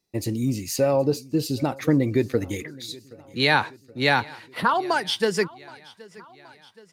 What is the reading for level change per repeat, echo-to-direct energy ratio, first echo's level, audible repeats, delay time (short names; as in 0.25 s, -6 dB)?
-4.5 dB, -21.0 dB, -22.5 dB, 3, 0.773 s